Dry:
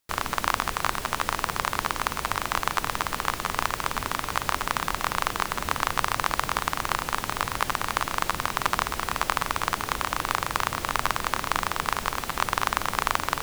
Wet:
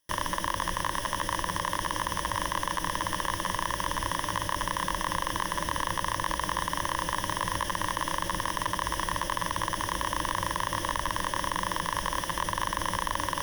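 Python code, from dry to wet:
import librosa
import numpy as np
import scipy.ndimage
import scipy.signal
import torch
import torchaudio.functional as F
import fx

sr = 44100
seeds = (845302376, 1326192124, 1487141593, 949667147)

p1 = fx.ripple_eq(x, sr, per_octave=1.2, db=14)
p2 = fx.over_compress(p1, sr, threshold_db=-26.0, ratio=-1.0)
p3 = p1 + (p2 * 10.0 ** (1.0 / 20.0))
p4 = 10.0 ** (-8.0 / 20.0) * np.tanh(p3 / 10.0 ** (-8.0 / 20.0))
y = p4 * 10.0 ** (-9.0 / 20.0)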